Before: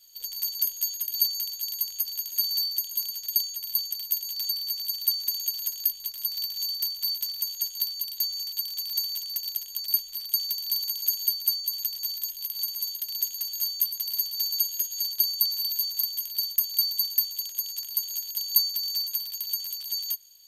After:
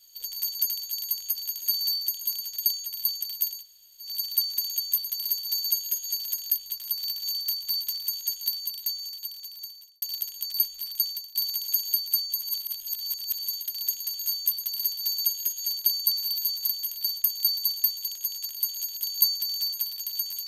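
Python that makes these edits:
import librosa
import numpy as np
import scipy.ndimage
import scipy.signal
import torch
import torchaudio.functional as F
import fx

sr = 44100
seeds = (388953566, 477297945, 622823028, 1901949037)

y = fx.edit(x, sr, fx.cut(start_s=0.67, length_s=0.7),
    fx.room_tone_fill(start_s=4.28, length_s=0.48, crossfade_s=0.16),
    fx.fade_out_span(start_s=7.91, length_s=1.45),
    fx.fade_out_to(start_s=10.34, length_s=0.35, floor_db=-20.0),
    fx.reverse_span(start_s=11.73, length_s=1.05),
    fx.duplicate(start_s=13.68, length_s=1.36, to_s=5.5), tone=tone)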